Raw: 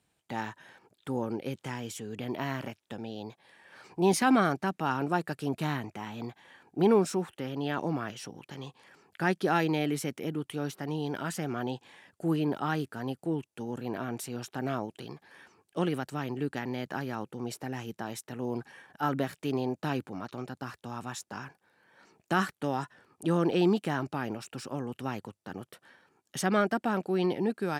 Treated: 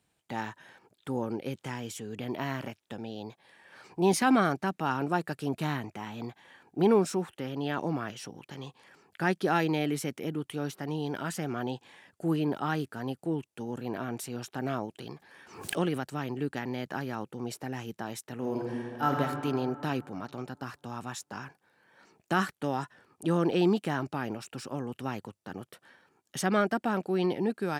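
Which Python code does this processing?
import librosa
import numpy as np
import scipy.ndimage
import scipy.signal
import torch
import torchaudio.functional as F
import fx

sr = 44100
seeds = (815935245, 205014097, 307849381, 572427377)

y = fx.pre_swell(x, sr, db_per_s=86.0, at=(15.06, 16.06))
y = fx.reverb_throw(y, sr, start_s=18.34, length_s=0.85, rt60_s=2.4, drr_db=-0.5)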